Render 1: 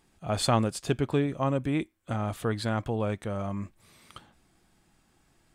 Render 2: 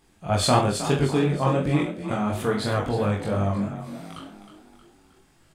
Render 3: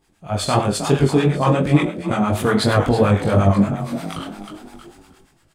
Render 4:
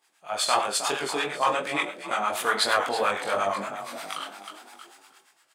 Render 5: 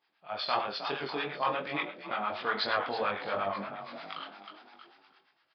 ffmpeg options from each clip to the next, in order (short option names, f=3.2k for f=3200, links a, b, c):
-filter_complex "[0:a]asplit=2[a][b];[b]aecho=0:1:20|43|69.45|99.87|134.8:0.631|0.398|0.251|0.158|0.1[c];[a][c]amix=inputs=2:normalize=0,flanger=delay=20:depth=4.4:speed=2.9,asplit=2[d][e];[e]asplit=5[f][g][h][i][j];[f]adelay=314,afreqshift=36,volume=-11.5dB[k];[g]adelay=628,afreqshift=72,volume=-17.9dB[l];[h]adelay=942,afreqshift=108,volume=-24.3dB[m];[i]adelay=1256,afreqshift=144,volume=-30.6dB[n];[j]adelay=1570,afreqshift=180,volume=-37dB[o];[k][l][m][n][o]amix=inputs=5:normalize=0[p];[d][p]amix=inputs=2:normalize=0,volume=6.5dB"
-filter_complex "[0:a]dynaudnorm=f=130:g=9:m=13.5dB,acrossover=split=780[a][b];[a]aeval=exprs='val(0)*(1-0.7/2+0.7/2*cos(2*PI*8.6*n/s))':c=same[c];[b]aeval=exprs='val(0)*(1-0.7/2-0.7/2*cos(2*PI*8.6*n/s))':c=same[d];[c][d]amix=inputs=2:normalize=0,volume=1.5dB"
-af "highpass=860"
-af "bass=f=250:g=6,treble=f=4k:g=-2,aresample=11025,aresample=44100,volume=-6.5dB"